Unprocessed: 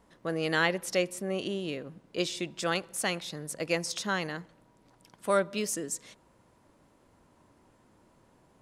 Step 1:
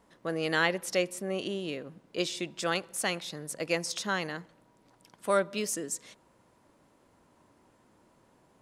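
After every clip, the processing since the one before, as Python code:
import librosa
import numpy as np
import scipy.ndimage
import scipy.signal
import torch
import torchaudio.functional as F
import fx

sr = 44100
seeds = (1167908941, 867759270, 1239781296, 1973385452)

y = fx.low_shelf(x, sr, hz=110.0, db=-7.0)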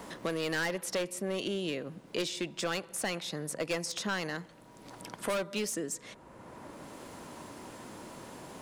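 y = np.clip(x, -10.0 ** (-27.0 / 20.0), 10.0 ** (-27.0 / 20.0))
y = fx.band_squash(y, sr, depth_pct=70)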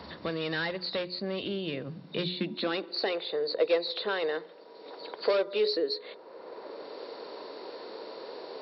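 y = fx.freq_compress(x, sr, knee_hz=3500.0, ratio=4.0)
y = fx.hum_notches(y, sr, base_hz=60, count=7)
y = fx.filter_sweep_highpass(y, sr, from_hz=77.0, to_hz=440.0, start_s=1.59, end_s=3.15, q=5.0)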